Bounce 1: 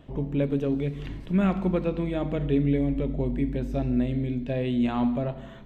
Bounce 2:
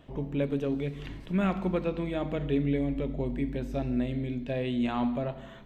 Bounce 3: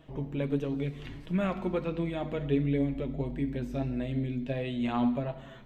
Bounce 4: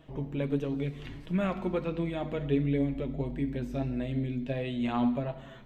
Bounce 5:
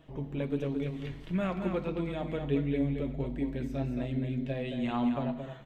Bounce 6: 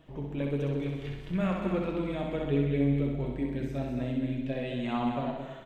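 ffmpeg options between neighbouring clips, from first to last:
ffmpeg -i in.wav -af "lowshelf=frequency=460:gain=-5.5" out.wav
ffmpeg -i in.wav -af "flanger=delay=6.2:depth=2.3:regen=40:speed=1.5:shape=sinusoidal,volume=2.5dB" out.wav
ffmpeg -i in.wav -af anull out.wav
ffmpeg -i in.wav -af "aecho=1:1:221:0.473,volume=-2dB" out.wav
ffmpeg -i in.wav -af "aecho=1:1:64|128|192|256|320|384|448|512:0.631|0.36|0.205|0.117|0.0666|0.038|0.0216|0.0123" out.wav

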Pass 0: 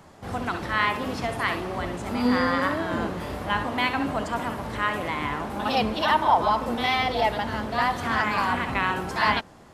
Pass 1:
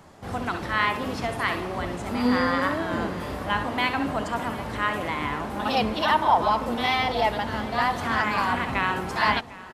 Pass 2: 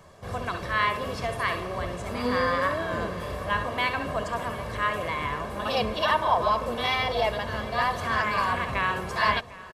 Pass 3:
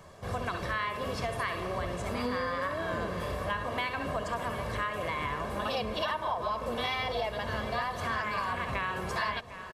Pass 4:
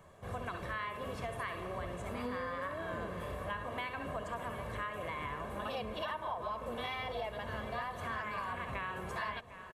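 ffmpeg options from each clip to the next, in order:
ffmpeg -i in.wav -af "aecho=1:1:751|1502|2253|3004|3755:0.112|0.0651|0.0377|0.0219|0.0127" out.wav
ffmpeg -i in.wav -af "aecho=1:1:1.8:0.57,volume=-2.5dB" out.wav
ffmpeg -i in.wav -af "acompressor=threshold=-29dB:ratio=6" out.wav
ffmpeg -i in.wav -af "equalizer=frequency=5000:width=2.1:gain=-10,volume=-6.5dB" out.wav

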